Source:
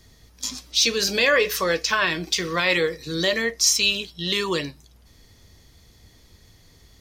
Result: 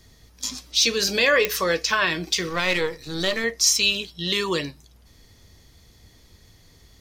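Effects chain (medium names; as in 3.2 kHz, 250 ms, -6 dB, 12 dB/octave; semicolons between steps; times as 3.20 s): 2.49–3.44 s: partial rectifier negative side -7 dB; clicks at 1.45 s, -5 dBFS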